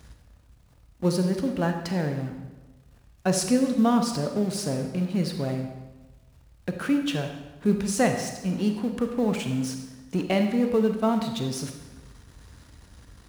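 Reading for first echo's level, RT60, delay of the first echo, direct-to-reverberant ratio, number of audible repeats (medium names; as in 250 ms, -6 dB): no echo, 1.2 s, no echo, 5.0 dB, no echo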